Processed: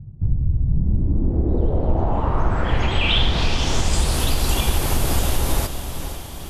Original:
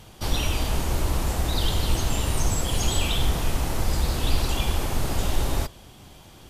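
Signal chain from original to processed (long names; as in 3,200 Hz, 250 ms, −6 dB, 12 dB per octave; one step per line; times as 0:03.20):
downward compressor 2.5 to 1, threshold −25 dBFS, peak gain reduction 8 dB
low-pass filter sweep 130 Hz → 12,000 Hz, 0:00.61–0:04.26
on a send: feedback delay with all-pass diffusion 487 ms, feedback 44%, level −9 dB
on the sum: level +8 dB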